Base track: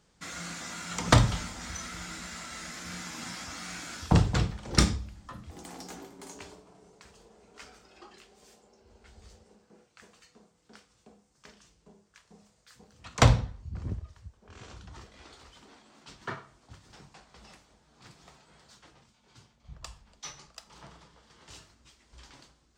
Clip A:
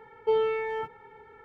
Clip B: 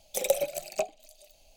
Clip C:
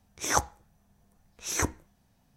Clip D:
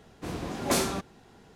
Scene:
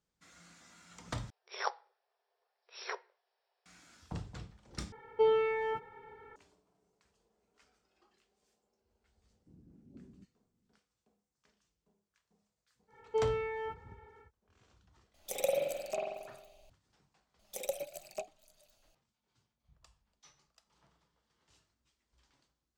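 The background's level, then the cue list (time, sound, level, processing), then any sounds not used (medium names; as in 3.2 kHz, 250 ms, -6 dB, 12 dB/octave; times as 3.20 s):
base track -20 dB
1.30 s: replace with C -8.5 dB + FFT band-pass 370–5700 Hz
4.92 s: replace with A -2.5 dB
9.24 s: add D -17.5 dB + four-pole ladder low-pass 300 Hz, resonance 30%
12.87 s: add A -7 dB, fades 0.10 s
15.14 s: add B -9 dB + spring tank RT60 1.1 s, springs 45 ms, DRR -3.5 dB
17.39 s: add B -11.5 dB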